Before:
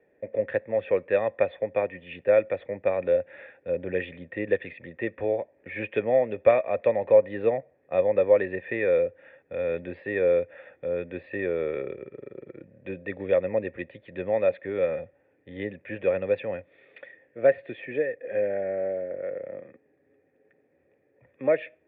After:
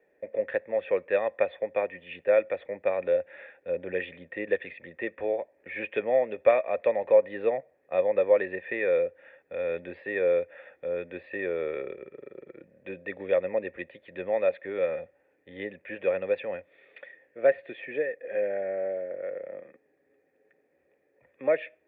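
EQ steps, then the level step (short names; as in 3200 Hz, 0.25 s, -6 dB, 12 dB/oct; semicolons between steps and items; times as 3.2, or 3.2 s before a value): bell 110 Hz -11.5 dB 0.53 oct; bell 250 Hz -2.5 dB 0.77 oct; low shelf 380 Hz -5 dB; 0.0 dB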